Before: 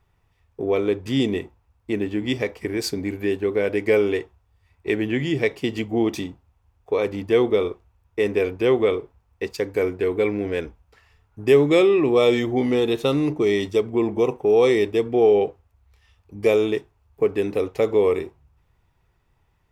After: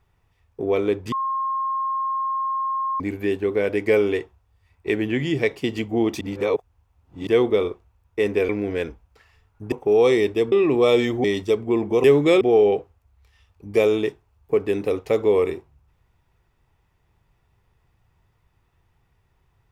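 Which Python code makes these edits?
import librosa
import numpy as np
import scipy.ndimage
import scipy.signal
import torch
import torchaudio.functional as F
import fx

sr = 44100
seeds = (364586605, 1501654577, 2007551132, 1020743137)

y = fx.edit(x, sr, fx.bleep(start_s=1.12, length_s=1.88, hz=1070.0, db=-21.5),
    fx.reverse_span(start_s=6.21, length_s=1.06),
    fx.cut(start_s=8.49, length_s=1.77),
    fx.swap(start_s=11.49, length_s=0.37, other_s=14.3, other_length_s=0.8),
    fx.cut(start_s=12.58, length_s=0.92), tone=tone)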